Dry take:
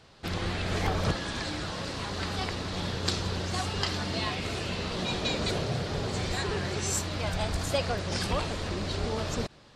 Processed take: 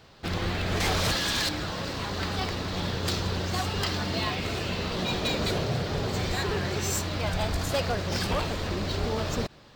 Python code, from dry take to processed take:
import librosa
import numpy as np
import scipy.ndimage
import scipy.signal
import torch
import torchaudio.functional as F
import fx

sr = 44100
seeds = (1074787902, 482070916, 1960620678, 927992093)

y = fx.high_shelf(x, sr, hz=2200.0, db=12.0, at=(0.8, 1.49))
y = 10.0 ** (-22.0 / 20.0) * (np.abs((y / 10.0 ** (-22.0 / 20.0) + 3.0) % 4.0 - 2.0) - 1.0)
y = np.interp(np.arange(len(y)), np.arange(len(y))[::2], y[::2])
y = F.gain(torch.from_numpy(y), 2.5).numpy()